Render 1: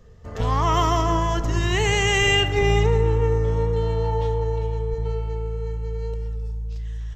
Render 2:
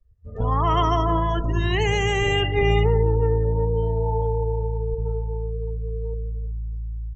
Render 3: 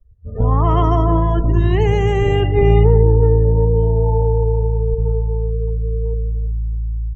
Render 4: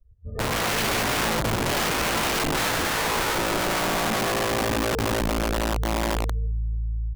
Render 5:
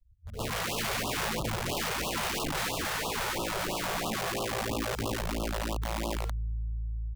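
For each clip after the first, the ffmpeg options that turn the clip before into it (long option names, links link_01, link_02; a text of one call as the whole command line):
ffmpeg -i in.wav -filter_complex "[0:a]afftdn=noise_reduction=31:noise_floor=-29,acrossover=split=570|1400[link_01][link_02][link_03];[link_03]alimiter=limit=-21dB:level=0:latency=1:release=34[link_04];[link_01][link_02][link_04]amix=inputs=3:normalize=0" out.wav
ffmpeg -i in.wav -af "tiltshelf=frequency=1200:gain=8.5" out.wav
ffmpeg -i in.wav -af "aeval=exprs='(mod(5.01*val(0)+1,2)-1)/5.01':channel_layout=same,volume=-5.5dB" out.wav
ffmpeg -i in.wav -filter_complex "[0:a]acrossover=split=250|1500[link_01][link_02][link_03];[link_02]acrusher=bits=6:mix=0:aa=0.000001[link_04];[link_01][link_04][link_03]amix=inputs=3:normalize=0,afftfilt=real='re*(1-between(b*sr/1024,240*pow(1900/240,0.5+0.5*sin(2*PI*3*pts/sr))/1.41,240*pow(1900/240,0.5+0.5*sin(2*PI*3*pts/sr))*1.41))':imag='im*(1-between(b*sr/1024,240*pow(1900/240,0.5+0.5*sin(2*PI*3*pts/sr))/1.41,240*pow(1900/240,0.5+0.5*sin(2*PI*3*pts/sr))*1.41))':win_size=1024:overlap=0.75,volume=-7dB" out.wav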